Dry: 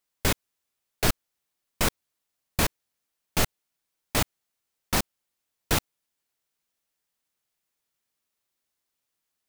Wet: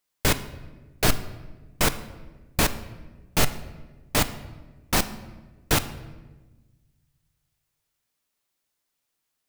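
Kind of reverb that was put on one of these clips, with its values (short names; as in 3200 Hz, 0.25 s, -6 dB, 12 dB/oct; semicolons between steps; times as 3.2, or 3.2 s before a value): shoebox room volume 820 m³, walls mixed, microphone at 0.43 m; gain +2.5 dB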